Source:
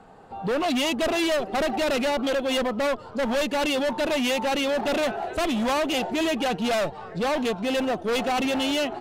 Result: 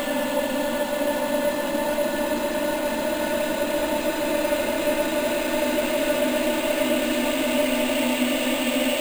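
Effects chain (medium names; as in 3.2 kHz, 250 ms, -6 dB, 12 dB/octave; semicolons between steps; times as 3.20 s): Paulstretch 27×, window 0.50 s, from 3.87 s; careless resampling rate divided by 4×, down filtered, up hold; trim +1.5 dB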